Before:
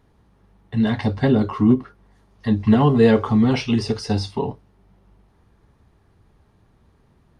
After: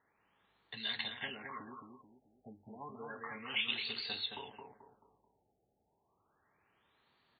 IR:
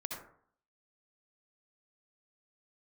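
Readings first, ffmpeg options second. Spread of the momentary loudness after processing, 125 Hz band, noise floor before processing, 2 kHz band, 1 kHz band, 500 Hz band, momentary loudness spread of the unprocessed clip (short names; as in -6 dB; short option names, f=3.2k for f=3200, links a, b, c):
21 LU, -38.5 dB, -59 dBFS, -9.0 dB, -20.0 dB, -30.0 dB, 12 LU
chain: -filter_complex "[0:a]acrossover=split=2000[a][b];[a]acompressor=threshold=-28dB:ratio=10[c];[c][b]amix=inputs=2:normalize=0,aderivative,asplit=2[d][e];[e]adelay=218,lowpass=f=2k:p=1,volume=-4dB,asplit=2[f][g];[g]adelay=218,lowpass=f=2k:p=1,volume=0.4,asplit=2[h][i];[i]adelay=218,lowpass=f=2k:p=1,volume=0.4,asplit=2[j][k];[k]adelay=218,lowpass=f=2k:p=1,volume=0.4,asplit=2[l][m];[m]adelay=218,lowpass=f=2k:p=1,volume=0.4[n];[d][f][h][j][l][n]amix=inputs=6:normalize=0,afftfilt=real='re*lt(b*sr/1024,840*pow(4700/840,0.5+0.5*sin(2*PI*0.31*pts/sr)))':imag='im*lt(b*sr/1024,840*pow(4700/840,0.5+0.5*sin(2*PI*0.31*pts/sr)))':win_size=1024:overlap=0.75,volume=7dB"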